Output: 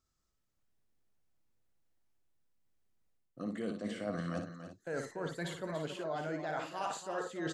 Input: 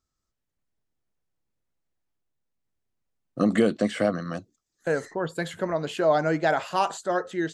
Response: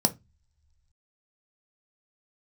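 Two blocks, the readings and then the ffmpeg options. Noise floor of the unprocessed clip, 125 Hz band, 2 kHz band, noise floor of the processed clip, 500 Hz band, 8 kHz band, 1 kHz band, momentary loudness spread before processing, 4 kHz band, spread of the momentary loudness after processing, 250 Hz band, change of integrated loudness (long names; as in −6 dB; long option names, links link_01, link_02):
−83 dBFS, −9.5 dB, −12.5 dB, −81 dBFS, −14.0 dB, −8.0 dB, −13.0 dB, 11 LU, −10.0 dB, 4 LU, −13.0 dB, −13.5 dB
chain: -af "areverse,acompressor=threshold=-35dB:ratio=10,areverse,aecho=1:1:58|285|339:0.501|0.316|0.211,volume=-1dB"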